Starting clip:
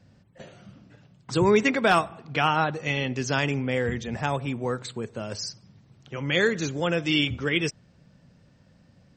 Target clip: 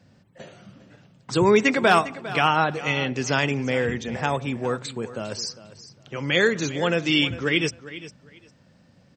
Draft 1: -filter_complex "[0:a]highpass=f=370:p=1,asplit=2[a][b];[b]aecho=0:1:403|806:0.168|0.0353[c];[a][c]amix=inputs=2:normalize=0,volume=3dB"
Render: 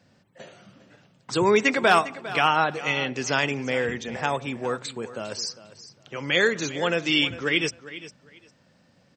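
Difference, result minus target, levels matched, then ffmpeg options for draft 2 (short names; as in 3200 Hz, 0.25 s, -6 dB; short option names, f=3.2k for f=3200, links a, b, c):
125 Hz band -5.0 dB
-filter_complex "[0:a]highpass=f=130:p=1,asplit=2[a][b];[b]aecho=0:1:403|806:0.168|0.0353[c];[a][c]amix=inputs=2:normalize=0,volume=3dB"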